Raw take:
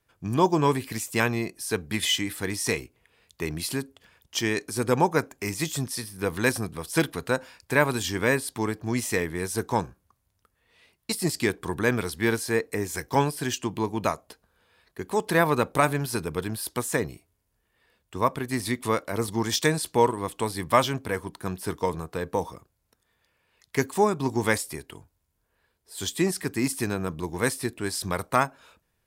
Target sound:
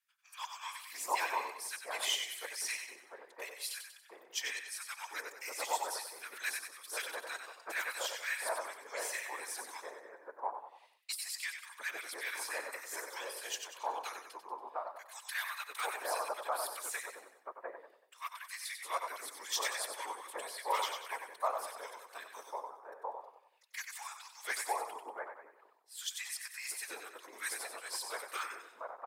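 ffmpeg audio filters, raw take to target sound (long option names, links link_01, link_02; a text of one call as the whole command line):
ffmpeg -i in.wav -filter_complex "[0:a]asplit=2[link_01][link_02];[link_02]aecho=0:1:94|188|282|376|470:0.447|0.192|0.0826|0.0355|0.0153[link_03];[link_01][link_03]amix=inputs=2:normalize=0,aeval=exprs='0.596*(cos(1*acos(clip(val(0)/0.596,-1,1)))-cos(1*PI/2))+0.106*(cos(4*acos(clip(val(0)/0.596,-1,1)))-cos(4*PI/2))+0.0668*(cos(6*acos(clip(val(0)/0.596,-1,1)))-cos(6*PI/2))':channel_layout=same,afftfilt=real='hypot(re,im)*cos(2*PI*random(0))':imag='hypot(re,im)*sin(2*PI*random(1))':win_size=512:overlap=0.75,highpass=frequency=660:width=0.5412,highpass=frequency=660:width=1.3066,acrossover=split=1300[link_04][link_05];[link_04]adelay=700[link_06];[link_06][link_05]amix=inputs=2:normalize=0,volume=-2.5dB" out.wav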